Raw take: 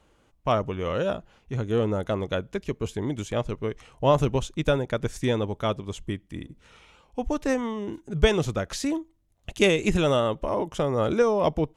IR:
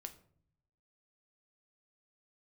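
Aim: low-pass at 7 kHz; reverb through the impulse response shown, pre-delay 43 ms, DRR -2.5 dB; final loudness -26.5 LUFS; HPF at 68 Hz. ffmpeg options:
-filter_complex "[0:a]highpass=68,lowpass=7000,asplit=2[s0][s1];[1:a]atrim=start_sample=2205,adelay=43[s2];[s1][s2]afir=irnorm=-1:irlink=0,volume=2.24[s3];[s0][s3]amix=inputs=2:normalize=0,volume=0.596"

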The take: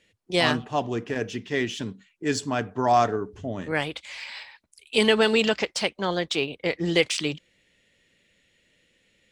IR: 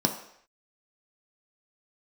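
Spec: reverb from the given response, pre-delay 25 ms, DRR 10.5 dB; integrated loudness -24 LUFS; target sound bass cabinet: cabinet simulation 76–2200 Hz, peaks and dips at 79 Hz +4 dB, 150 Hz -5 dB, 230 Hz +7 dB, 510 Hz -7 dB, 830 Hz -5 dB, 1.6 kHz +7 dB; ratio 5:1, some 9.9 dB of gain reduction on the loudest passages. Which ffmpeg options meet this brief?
-filter_complex "[0:a]acompressor=threshold=0.0501:ratio=5,asplit=2[s0][s1];[1:a]atrim=start_sample=2205,adelay=25[s2];[s1][s2]afir=irnorm=-1:irlink=0,volume=0.0944[s3];[s0][s3]amix=inputs=2:normalize=0,highpass=f=76:w=0.5412,highpass=f=76:w=1.3066,equalizer=f=79:t=q:w=4:g=4,equalizer=f=150:t=q:w=4:g=-5,equalizer=f=230:t=q:w=4:g=7,equalizer=f=510:t=q:w=4:g=-7,equalizer=f=830:t=q:w=4:g=-5,equalizer=f=1600:t=q:w=4:g=7,lowpass=f=2200:w=0.5412,lowpass=f=2200:w=1.3066,volume=2.24"

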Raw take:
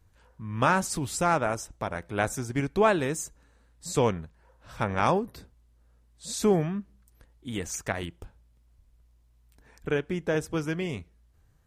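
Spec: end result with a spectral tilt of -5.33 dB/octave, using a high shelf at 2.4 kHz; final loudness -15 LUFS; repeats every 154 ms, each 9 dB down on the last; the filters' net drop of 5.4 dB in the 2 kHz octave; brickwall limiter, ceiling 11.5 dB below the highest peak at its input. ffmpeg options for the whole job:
-af "equalizer=f=2000:t=o:g=-4,highshelf=f=2400:g=-8,alimiter=limit=0.0708:level=0:latency=1,aecho=1:1:154|308|462|616:0.355|0.124|0.0435|0.0152,volume=10"

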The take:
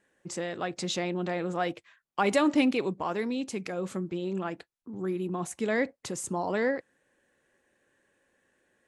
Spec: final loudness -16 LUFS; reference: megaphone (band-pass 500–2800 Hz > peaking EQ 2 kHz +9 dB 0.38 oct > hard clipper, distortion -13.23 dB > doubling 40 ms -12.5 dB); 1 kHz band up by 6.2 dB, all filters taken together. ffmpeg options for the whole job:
-filter_complex "[0:a]highpass=500,lowpass=2800,equalizer=f=1000:t=o:g=8.5,equalizer=f=2000:t=o:w=0.38:g=9,asoftclip=type=hard:threshold=0.112,asplit=2[s0][s1];[s1]adelay=40,volume=0.237[s2];[s0][s2]amix=inputs=2:normalize=0,volume=5.01"

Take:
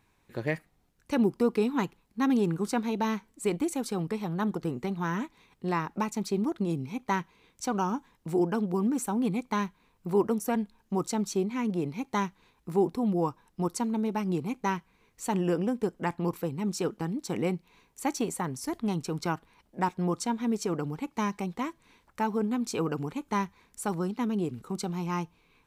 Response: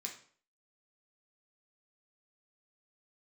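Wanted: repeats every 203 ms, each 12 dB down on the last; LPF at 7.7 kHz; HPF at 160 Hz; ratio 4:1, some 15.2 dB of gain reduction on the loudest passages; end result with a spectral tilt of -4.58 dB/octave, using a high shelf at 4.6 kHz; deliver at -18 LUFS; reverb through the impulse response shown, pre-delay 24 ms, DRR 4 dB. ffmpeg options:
-filter_complex "[0:a]highpass=160,lowpass=7700,highshelf=f=4600:g=8.5,acompressor=threshold=0.01:ratio=4,aecho=1:1:203|406|609:0.251|0.0628|0.0157,asplit=2[s0][s1];[1:a]atrim=start_sample=2205,adelay=24[s2];[s1][s2]afir=irnorm=-1:irlink=0,volume=0.794[s3];[s0][s3]amix=inputs=2:normalize=0,volume=13.3"

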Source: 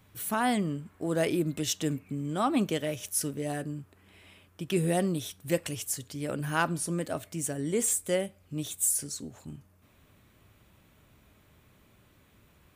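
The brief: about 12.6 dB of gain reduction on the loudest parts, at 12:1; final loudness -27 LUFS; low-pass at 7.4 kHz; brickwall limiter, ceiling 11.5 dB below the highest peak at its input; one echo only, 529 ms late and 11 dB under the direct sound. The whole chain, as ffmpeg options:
-af "lowpass=7400,acompressor=threshold=0.0178:ratio=12,alimiter=level_in=3.76:limit=0.0631:level=0:latency=1,volume=0.266,aecho=1:1:529:0.282,volume=7.5"

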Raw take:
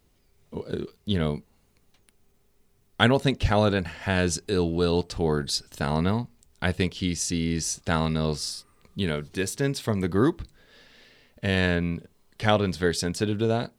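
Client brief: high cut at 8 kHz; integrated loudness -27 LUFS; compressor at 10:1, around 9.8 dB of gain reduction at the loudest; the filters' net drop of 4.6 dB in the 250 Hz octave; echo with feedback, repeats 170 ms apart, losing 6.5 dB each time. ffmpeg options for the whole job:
-af "lowpass=8000,equalizer=f=250:t=o:g=-6.5,acompressor=threshold=0.0501:ratio=10,aecho=1:1:170|340|510|680|850|1020:0.473|0.222|0.105|0.0491|0.0231|0.0109,volume=1.78"

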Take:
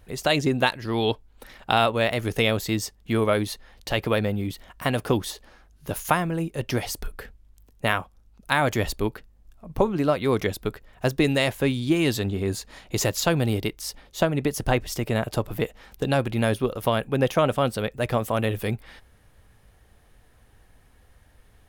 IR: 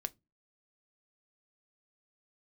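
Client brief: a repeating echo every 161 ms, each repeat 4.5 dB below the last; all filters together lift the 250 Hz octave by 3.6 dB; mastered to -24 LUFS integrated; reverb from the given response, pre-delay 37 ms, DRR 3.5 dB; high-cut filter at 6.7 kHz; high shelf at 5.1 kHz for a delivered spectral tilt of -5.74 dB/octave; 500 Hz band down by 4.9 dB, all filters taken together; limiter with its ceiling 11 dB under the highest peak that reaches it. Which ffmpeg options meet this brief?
-filter_complex "[0:a]lowpass=6700,equalizer=f=250:t=o:g=7,equalizer=f=500:t=o:g=-8.5,highshelf=f=5100:g=-7,alimiter=limit=0.126:level=0:latency=1,aecho=1:1:161|322|483|644|805|966|1127|1288|1449:0.596|0.357|0.214|0.129|0.0772|0.0463|0.0278|0.0167|0.01,asplit=2[s0][s1];[1:a]atrim=start_sample=2205,adelay=37[s2];[s1][s2]afir=irnorm=-1:irlink=0,volume=0.75[s3];[s0][s3]amix=inputs=2:normalize=0,volume=1.33"

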